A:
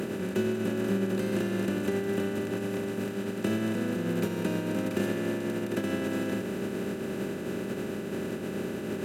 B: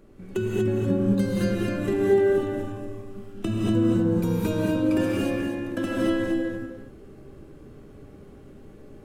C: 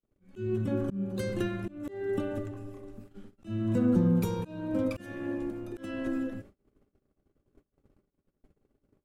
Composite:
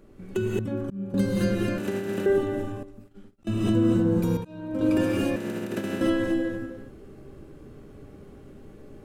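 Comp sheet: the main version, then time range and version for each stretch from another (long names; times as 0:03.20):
B
0:00.59–0:01.14: punch in from C
0:01.78–0:02.26: punch in from A
0:02.83–0:03.47: punch in from C
0:04.37–0:04.81: punch in from C
0:05.36–0:06.01: punch in from A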